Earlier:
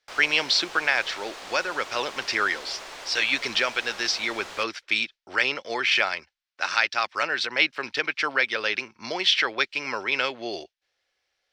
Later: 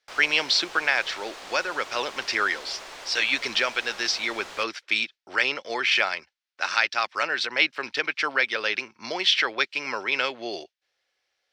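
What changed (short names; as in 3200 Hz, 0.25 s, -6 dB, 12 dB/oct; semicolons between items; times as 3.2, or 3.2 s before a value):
speech: add low shelf 92 Hz -11.5 dB; reverb: off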